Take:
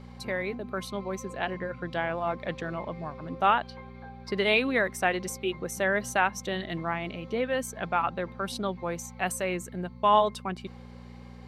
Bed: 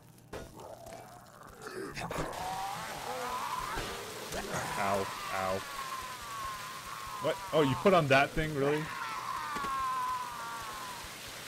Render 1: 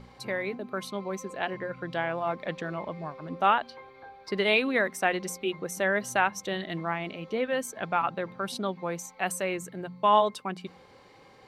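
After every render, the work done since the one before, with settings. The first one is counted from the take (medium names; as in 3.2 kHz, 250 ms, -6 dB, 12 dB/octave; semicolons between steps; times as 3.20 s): de-hum 60 Hz, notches 4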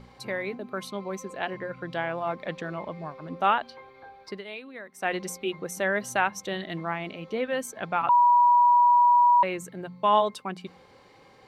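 4.22–5.13 s: dip -16 dB, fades 0.20 s; 8.09–9.43 s: bleep 968 Hz -15 dBFS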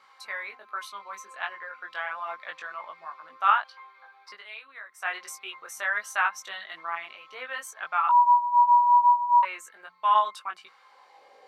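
high-pass sweep 1.2 kHz -> 570 Hz, 10.77–11.33 s; chorus 1.3 Hz, delay 18 ms, depth 2 ms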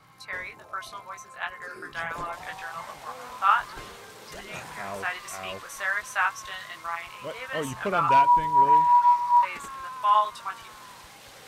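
add bed -4.5 dB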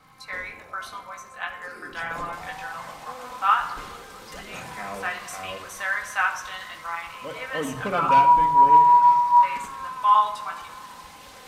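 filtered feedback delay 216 ms, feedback 82%, low-pass 2 kHz, level -23.5 dB; simulated room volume 3500 m³, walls furnished, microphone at 2 m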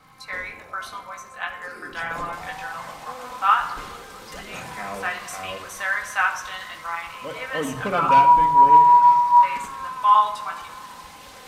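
trim +2 dB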